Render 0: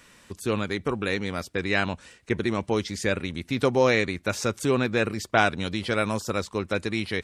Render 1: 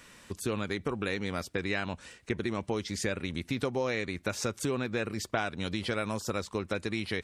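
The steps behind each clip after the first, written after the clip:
downward compressor 4 to 1, threshold −29 dBFS, peak gain reduction 12 dB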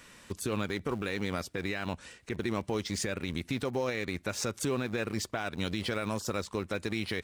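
in parallel at −10 dB: centre clipping without the shift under −34.5 dBFS
on the sum: brickwall limiter −22 dBFS, peak gain reduction 8.5 dB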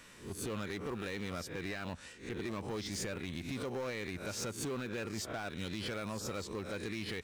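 peak hold with a rise ahead of every peak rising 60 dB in 0.32 s
soft clipping −29.5 dBFS, distortion −11 dB
level −3.5 dB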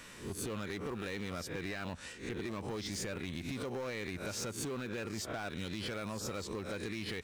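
downward compressor, threshold −41 dBFS, peak gain reduction 5.5 dB
level +4.5 dB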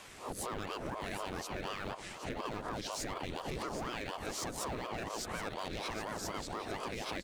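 single-tap delay 771 ms −10 dB
ring modulator whose carrier an LFO sweeps 480 Hz, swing 80%, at 4.1 Hz
level +2.5 dB

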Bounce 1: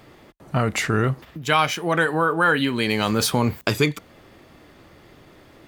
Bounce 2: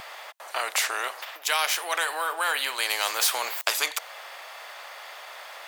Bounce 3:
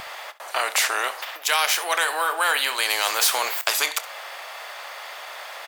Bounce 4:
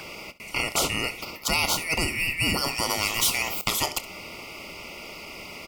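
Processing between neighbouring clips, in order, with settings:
Butterworth high-pass 650 Hz 36 dB per octave; every bin compressed towards the loudest bin 2 to 1
in parallel at −2.5 dB: brickwall limiter −15.5 dBFS, peak gain reduction 9.5 dB; on the sum: ambience of single reflections 28 ms −16.5 dB, 68 ms −18 dB
band-splitting scrambler in four parts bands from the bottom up 2143; level −3 dB

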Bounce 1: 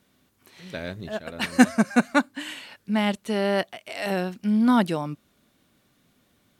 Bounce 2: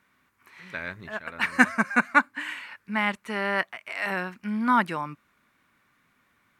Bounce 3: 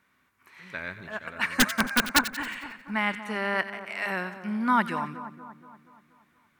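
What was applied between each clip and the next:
flat-topped bell 1,500 Hz +13 dB; level −7.5 dB
wrap-around overflow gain 9 dB; echo with a time of its own for lows and highs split 1,400 Hz, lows 237 ms, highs 90 ms, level −12 dB; level −1.5 dB

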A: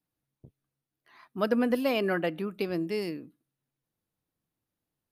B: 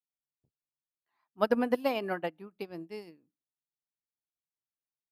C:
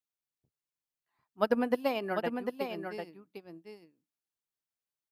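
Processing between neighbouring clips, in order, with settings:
parametric band 850 Hz +8.5 dB 0.51 octaves; expander for the loud parts 2.5 to 1, over −38 dBFS
single-tap delay 748 ms −6 dB; level −1 dB

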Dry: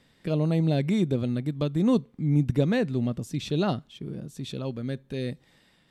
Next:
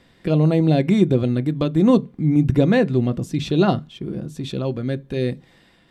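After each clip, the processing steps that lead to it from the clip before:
high-shelf EQ 4,300 Hz −6.5 dB
on a send at −10 dB: convolution reverb RT60 0.15 s, pre-delay 3 ms
on the sum: level +8 dB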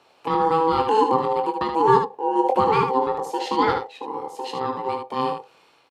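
ring modulation 650 Hz
high-pass filter 260 Hz 6 dB per octave
on a send: ambience of single reflections 23 ms −7.5 dB, 76 ms −6.5 dB

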